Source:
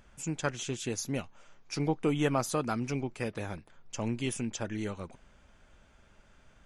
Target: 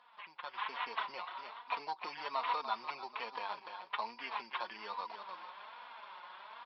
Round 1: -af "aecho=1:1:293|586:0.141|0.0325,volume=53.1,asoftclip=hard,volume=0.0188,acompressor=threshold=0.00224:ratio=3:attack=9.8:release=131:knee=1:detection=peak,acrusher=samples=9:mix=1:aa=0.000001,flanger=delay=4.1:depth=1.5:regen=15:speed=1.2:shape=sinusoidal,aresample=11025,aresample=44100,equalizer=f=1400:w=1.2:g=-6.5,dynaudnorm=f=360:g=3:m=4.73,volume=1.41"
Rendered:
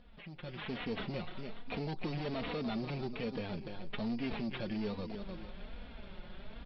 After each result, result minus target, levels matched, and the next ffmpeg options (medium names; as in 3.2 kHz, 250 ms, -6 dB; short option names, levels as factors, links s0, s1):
1 kHz band -11.5 dB; overload inside the chain: distortion +11 dB
-af "aecho=1:1:293|586:0.141|0.0325,volume=53.1,asoftclip=hard,volume=0.0188,acompressor=threshold=0.00224:ratio=3:attack=9.8:release=131:knee=1:detection=peak,acrusher=samples=9:mix=1:aa=0.000001,flanger=delay=4.1:depth=1.5:regen=15:speed=1.2:shape=sinusoidal,aresample=11025,aresample=44100,highpass=f=1000:t=q:w=7.2,equalizer=f=1400:w=1.2:g=-6.5,dynaudnorm=f=360:g=3:m=4.73,volume=1.41"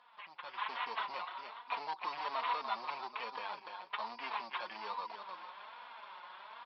overload inside the chain: distortion +11 dB
-af "aecho=1:1:293|586:0.141|0.0325,volume=15,asoftclip=hard,volume=0.0668,acompressor=threshold=0.00224:ratio=3:attack=9.8:release=131:knee=1:detection=peak,acrusher=samples=9:mix=1:aa=0.000001,flanger=delay=4.1:depth=1.5:regen=15:speed=1.2:shape=sinusoidal,aresample=11025,aresample=44100,highpass=f=1000:t=q:w=7.2,equalizer=f=1400:w=1.2:g=-6.5,dynaudnorm=f=360:g=3:m=4.73,volume=1.41"